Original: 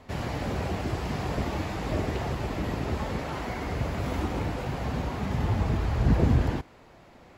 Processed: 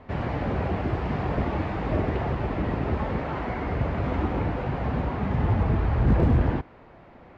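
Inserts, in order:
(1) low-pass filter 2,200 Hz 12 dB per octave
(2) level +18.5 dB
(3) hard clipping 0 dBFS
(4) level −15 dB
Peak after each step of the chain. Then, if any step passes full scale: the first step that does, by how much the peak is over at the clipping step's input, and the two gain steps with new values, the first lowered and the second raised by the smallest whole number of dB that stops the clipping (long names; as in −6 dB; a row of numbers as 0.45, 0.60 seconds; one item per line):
−9.0, +9.5, 0.0, −15.0 dBFS
step 2, 9.5 dB
step 2 +8.5 dB, step 4 −5 dB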